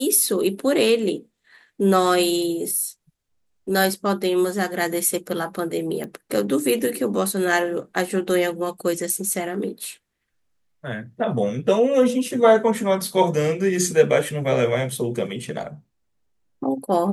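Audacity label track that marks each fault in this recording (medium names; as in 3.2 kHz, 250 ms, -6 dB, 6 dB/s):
6.040000	6.040000	pop -19 dBFS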